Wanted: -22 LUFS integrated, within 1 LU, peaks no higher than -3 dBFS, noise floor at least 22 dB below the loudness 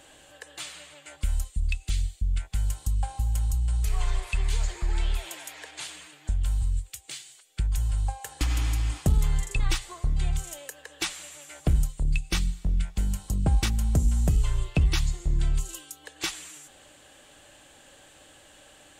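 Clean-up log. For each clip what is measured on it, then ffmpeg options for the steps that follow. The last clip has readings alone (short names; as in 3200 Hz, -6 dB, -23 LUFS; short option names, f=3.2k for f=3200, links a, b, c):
loudness -29.0 LUFS; peak -14.0 dBFS; loudness target -22.0 LUFS
-> -af "volume=7dB"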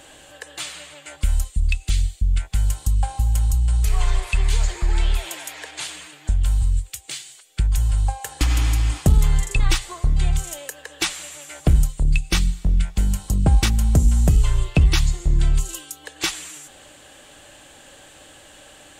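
loudness -22.0 LUFS; peak -7.0 dBFS; noise floor -47 dBFS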